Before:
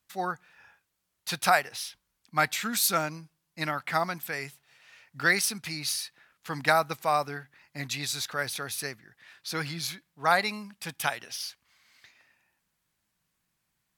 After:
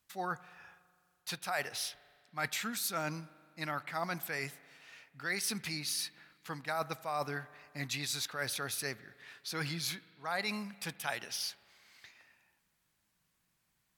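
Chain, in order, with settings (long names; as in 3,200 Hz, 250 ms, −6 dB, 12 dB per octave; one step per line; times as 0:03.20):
reversed playback
downward compressor 6 to 1, threshold −33 dBFS, peak gain reduction 15.5 dB
reversed playback
spring reverb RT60 2.1 s, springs 40 ms, chirp 35 ms, DRR 18.5 dB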